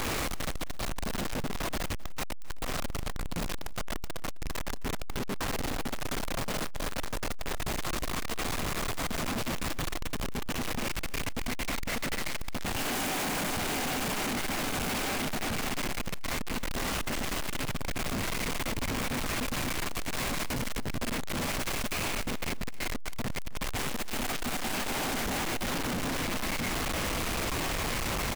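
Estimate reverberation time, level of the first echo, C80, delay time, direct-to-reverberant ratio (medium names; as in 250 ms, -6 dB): no reverb, -21.0 dB, no reverb, 263 ms, no reverb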